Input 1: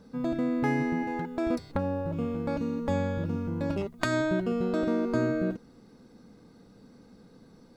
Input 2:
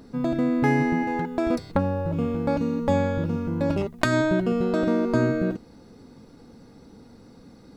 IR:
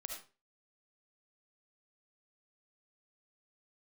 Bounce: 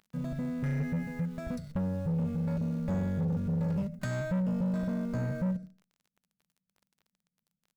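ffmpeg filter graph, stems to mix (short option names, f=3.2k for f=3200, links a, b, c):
-filter_complex "[0:a]agate=range=-39dB:threshold=-44dB:ratio=16:detection=peak,firequalizer=gain_entry='entry(110,0);entry(170,10);entry(340,-24);entry(590,-4);entry(910,-30);entry(1400,-9);entry(3100,-17);entry(6500,-7)':delay=0.05:min_phase=1,volume=0.5dB,asplit=2[a][b];[b]volume=-9dB[c];[1:a]highpass=f=830:p=1,acompressor=threshold=-39dB:ratio=3,acrusher=bits=7:mix=0:aa=0.000001,volume=-11.5dB[d];[2:a]atrim=start_sample=2205[e];[c][e]afir=irnorm=-1:irlink=0[f];[a][d][f]amix=inputs=3:normalize=0,asoftclip=type=tanh:threshold=-26.5dB"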